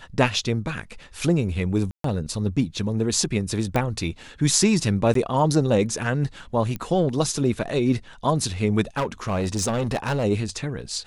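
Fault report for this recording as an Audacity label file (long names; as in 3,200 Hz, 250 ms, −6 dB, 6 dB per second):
1.910000	2.040000	drop-out 133 ms
3.760000	3.760000	click −10 dBFS
5.140000	5.150000	drop-out
6.760000	6.760000	click −17 dBFS
8.960000	10.250000	clipping −19.5 dBFS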